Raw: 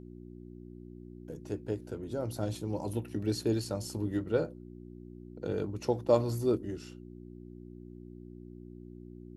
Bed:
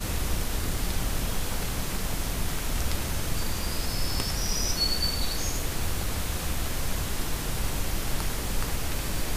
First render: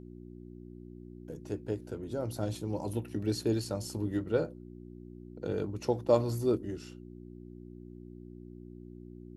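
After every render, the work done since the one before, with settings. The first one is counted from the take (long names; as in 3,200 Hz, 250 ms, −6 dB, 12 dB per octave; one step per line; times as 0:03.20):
no processing that can be heard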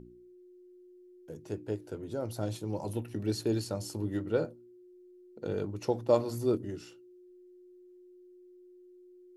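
hum removal 60 Hz, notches 5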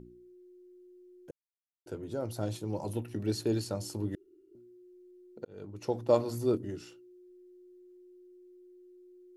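0:01.31–0:01.86: silence
0:04.15–0:04.55: fill with room tone
0:05.45–0:06.03: fade in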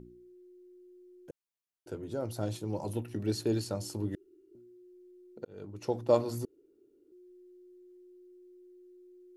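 0:06.45–0:07.12: fill with room tone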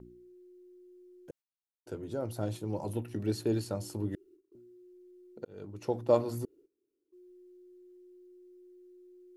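noise gate −58 dBFS, range −18 dB
dynamic equaliser 5,500 Hz, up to −5 dB, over −57 dBFS, Q 0.93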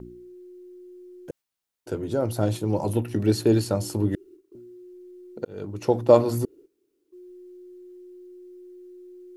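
level +10.5 dB
brickwall limiter −3 dBFS, peak gain reduction 1.5 dB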